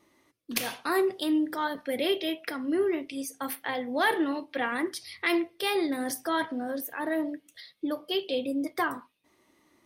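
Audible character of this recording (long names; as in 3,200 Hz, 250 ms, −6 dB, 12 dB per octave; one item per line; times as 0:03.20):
background noise floor −68 dBFS
spectral slope −2.5 dB per octave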